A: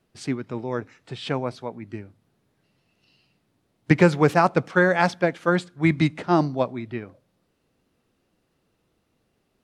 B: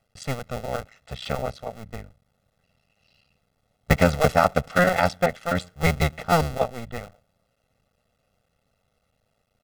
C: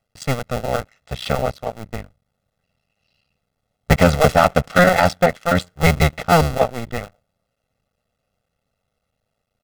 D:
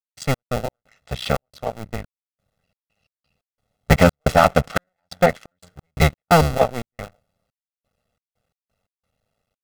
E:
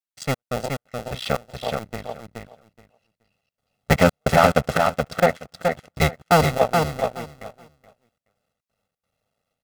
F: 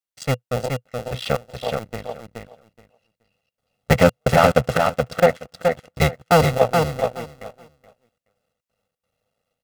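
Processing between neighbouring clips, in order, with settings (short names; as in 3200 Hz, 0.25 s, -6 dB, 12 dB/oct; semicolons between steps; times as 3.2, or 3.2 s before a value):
cycle switcher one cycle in 2, muted; comb 1.5 ms, depth 83%
sample leveller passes 2
step gate ".x.x.xxx.xxx..xx" 88 bpm -60 dB
low shelf 79 Hz -10 dB; on a send: feedback echo 0.424 s, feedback 16%, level -4.5 dB; on the sum: gain -1.5 dB
dynamic EQ 120 Hz, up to +7 dB, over -40 dBFS, Q 3.3; small resonant body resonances 500/2800 Hz, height 7 dB, ringing for 55 ms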